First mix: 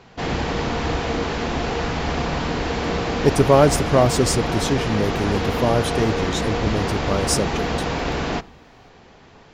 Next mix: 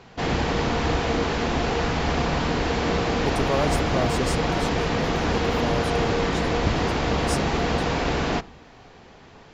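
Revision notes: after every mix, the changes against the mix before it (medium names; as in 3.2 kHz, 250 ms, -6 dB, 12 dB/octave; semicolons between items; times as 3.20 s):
speech -11.0 dB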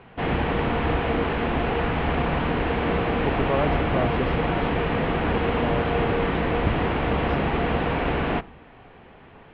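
master: add steep low-pass 3.1 kHz 36 dB/octave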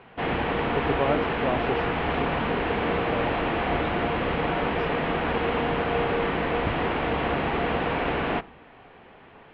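speech: entry -2.50 s; master: add bass shelf 190 Hz -8.5 dB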